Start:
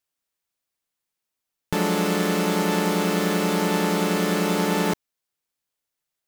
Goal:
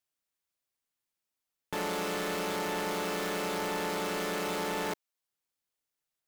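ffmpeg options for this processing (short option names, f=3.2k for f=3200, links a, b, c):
-filter_complex "[0:a]acrossover=split=370[a][b];[a]acompressor=threshold=-46dB:ratio=2[c];[c][b]amix=inputs=2:normalize=0,asoftclip=type=tanh:threshold=-22.5dB,volume=-4.5dB"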